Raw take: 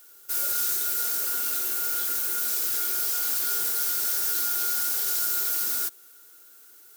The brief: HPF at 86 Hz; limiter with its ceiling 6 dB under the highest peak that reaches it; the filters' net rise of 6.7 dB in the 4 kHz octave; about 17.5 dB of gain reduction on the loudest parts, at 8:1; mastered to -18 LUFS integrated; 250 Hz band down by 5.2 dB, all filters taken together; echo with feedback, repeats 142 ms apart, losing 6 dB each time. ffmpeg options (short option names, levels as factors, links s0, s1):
-af "highpass=86,equalizer=f=250:t=o:g=-8,equalizer=f=4000:t=o:g=8.5,acompressor=threshold=0.00891:ratio=8,alimiter=level_in=3.35:limit=0.0631:level=0:latency=1,volume=0.299,aecho=1:1:142|284|426|568|710|852:0.501|0.251|0.125|0.0626|0.0313|0.0157,volume=14.1"